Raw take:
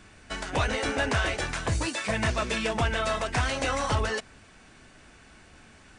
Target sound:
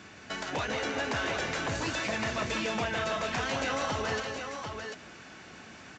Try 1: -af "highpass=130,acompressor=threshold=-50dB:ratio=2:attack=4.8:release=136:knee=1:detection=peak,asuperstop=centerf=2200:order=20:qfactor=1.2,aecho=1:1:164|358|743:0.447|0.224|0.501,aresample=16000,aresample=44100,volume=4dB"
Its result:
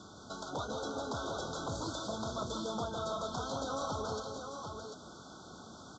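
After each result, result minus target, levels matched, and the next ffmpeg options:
2,000 Hz band −10.5 dB; downward compressor: peak gain reduction +5 dB
-af "highpass=130,acompressor=threshold=-50dB:ratio=2:attack=4.8:release=136:knee=1:detection=peak,aecho=1:1:164|358|743:0.447|0.224|0.501,aresample=16000,aresample=44100,volume=4dB"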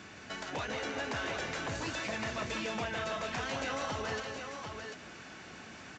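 downward compressor: peak gain reduction +5 dB
-af "highpass=130,acompressor=threshold=-40.5dB:ratio=2:attack=4.8:release=136:knee=1:detection=peak,aecho=1:1:164|358|743:0.447|0.224|0.501,aresample=16000,aresample=44100,volume=4dB"

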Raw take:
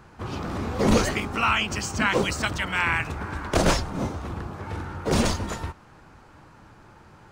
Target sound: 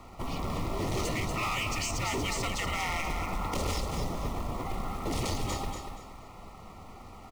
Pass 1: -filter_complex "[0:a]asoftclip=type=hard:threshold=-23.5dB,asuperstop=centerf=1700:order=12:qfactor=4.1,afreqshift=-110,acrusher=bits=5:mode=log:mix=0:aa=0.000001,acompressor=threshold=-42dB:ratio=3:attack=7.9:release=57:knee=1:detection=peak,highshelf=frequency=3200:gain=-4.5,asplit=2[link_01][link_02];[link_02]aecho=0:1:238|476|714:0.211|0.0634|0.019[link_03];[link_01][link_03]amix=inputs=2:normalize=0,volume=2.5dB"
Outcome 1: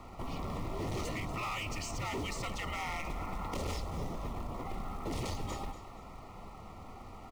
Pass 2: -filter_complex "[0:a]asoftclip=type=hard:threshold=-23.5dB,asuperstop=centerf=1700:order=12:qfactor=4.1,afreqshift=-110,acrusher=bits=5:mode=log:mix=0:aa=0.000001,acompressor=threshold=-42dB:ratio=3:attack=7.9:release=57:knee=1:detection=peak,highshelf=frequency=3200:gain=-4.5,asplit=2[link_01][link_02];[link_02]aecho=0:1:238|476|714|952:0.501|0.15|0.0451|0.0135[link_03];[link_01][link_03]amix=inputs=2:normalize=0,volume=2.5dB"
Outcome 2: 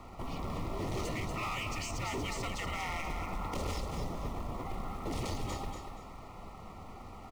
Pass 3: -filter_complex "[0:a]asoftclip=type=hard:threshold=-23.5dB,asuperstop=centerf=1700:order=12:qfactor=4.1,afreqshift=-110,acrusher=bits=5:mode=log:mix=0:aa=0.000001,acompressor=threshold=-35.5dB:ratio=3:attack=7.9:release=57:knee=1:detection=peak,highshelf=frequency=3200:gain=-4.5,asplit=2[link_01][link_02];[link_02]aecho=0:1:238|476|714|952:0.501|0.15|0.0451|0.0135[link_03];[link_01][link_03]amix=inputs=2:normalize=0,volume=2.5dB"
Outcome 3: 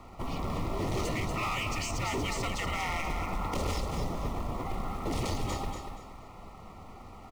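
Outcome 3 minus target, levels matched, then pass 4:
8,000 Hz band −3.0 dB
-filter_complex "[0:a]asoftclip=type=hard:threshold=-23.5dB,asuperstop=centerf=1700:order=12:qfactor=4.1,afreqshift=-110,acrusher=bits=5:mode=log:mix=0:aa=0.000001,acompressor=threshold=-35.5dB:ratio=3:attack=7.9:release=57:knee=1:detection=peak,asplit=2[link_01][link_02];[link_02]aecho=0:1:238|476|714|952:0.501|0.15|0.0451|0.0135[link_03];[link_01][link_03]amix=inputs=2:normalize=0,volume=2.5dB"

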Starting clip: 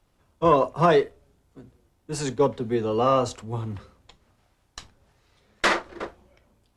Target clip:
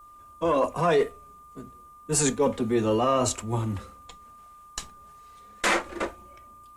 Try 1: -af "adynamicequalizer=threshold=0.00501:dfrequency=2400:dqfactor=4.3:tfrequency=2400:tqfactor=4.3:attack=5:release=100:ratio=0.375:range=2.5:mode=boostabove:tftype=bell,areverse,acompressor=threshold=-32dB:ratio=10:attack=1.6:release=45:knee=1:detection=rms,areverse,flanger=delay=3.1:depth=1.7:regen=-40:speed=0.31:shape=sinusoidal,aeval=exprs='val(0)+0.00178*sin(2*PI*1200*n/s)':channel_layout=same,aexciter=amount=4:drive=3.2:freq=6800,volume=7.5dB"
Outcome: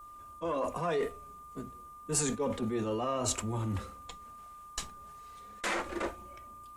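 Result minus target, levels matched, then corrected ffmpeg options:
downward compressor: peak gain reduction +10 dB
-af "adynamicequalizer=threshold=0.00501:dfrequency=2400:dqfactor=4.3:tfrequency=2400:tqfactor=4.3:attack=5:release=100:ratio=0.375:range=2.5:mode=boostabove:tftype=bell,areverse,acompressor=threshold=-21dB:ratio=10:attack=1.6:release=45:knee=1:detection=rms,areverse,flanger=delay=3.1:depth=1.7:regen=-40:speed=0.31:shape=sinusoidal,aeval=exprs='val(0)+0.00178*sin(2*PI*1200*n/s)':channel_layout=same,aexciter=amount=4:drive=3.2:freq=6800,volume=7.5dB"

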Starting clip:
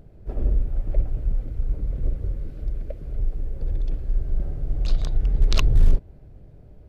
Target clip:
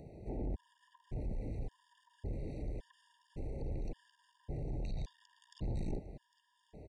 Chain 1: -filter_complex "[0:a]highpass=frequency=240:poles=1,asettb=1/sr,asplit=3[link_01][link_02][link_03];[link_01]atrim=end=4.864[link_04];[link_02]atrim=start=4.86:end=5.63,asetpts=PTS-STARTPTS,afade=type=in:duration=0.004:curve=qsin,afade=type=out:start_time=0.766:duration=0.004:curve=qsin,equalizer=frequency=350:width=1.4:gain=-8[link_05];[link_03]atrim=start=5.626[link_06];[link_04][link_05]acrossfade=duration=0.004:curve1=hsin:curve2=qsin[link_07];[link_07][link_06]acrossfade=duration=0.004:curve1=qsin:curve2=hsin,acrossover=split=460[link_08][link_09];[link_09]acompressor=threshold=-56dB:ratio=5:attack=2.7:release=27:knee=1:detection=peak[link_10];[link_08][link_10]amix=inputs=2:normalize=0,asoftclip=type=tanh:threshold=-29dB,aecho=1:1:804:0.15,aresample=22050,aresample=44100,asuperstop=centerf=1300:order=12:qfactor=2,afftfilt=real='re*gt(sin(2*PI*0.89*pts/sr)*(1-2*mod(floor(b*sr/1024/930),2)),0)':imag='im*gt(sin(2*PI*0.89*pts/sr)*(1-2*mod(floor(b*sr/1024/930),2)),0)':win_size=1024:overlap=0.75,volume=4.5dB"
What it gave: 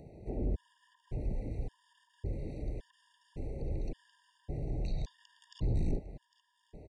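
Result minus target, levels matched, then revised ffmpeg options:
soft clipping: distortion −7 dB
-filter_complex "[0:a]highpass=frequency=240:poles=1,asettb=1/sr,asplit=3[link_01][link_02][link_03];[link_01]atrim=end=4.864[link_04];[link_02]atrim=start=4.86:end=5.63,asetpts=PTS-STARTPTS,afade=type=in:duration=0.004:curve=qsin,afade=type=out:start_time=0.766:duration=0.004:curve=qsin,equalizer=frequency=350:width=1.4:gain=-8[link_05];[link_03]atrim=start=5.626[link_06];[link_04][link_05]acrossfade=duration=0.004:curve1=hsin:curve2=qsin[link_07];[link_07][link_06]acrossfade=duration=0.004:curve1=qsin:curve2=hsin,acrossover=split=460[link_08][link_09];[link_09]acompressor=threshold=-56dB:ratio=5:attack=2.7:release=27:knee=1:detection=peak[link_10];[link_08][link_10]amix=inputs=2:normalize=0,asoftclip=type=tanh:threshold=-38.5dB,aecho=1:1:804:0.15,aresample=22050,aresample=44100,asuperstop=centerf=1300:order=12:qfactor=2,afftfilt=real='re*gt(sin(2*PI*0.89*pts/sr)*(1-2*mod(floor(b*sr/1024/930),2)),0)':imag='im*gt(sin(2*PI*0.89*pts/sr)*(1-2*mod(floor(b*sr/1024/930),2)),0)':win_size=1024:overlap=0.75,volume=4.5dB"

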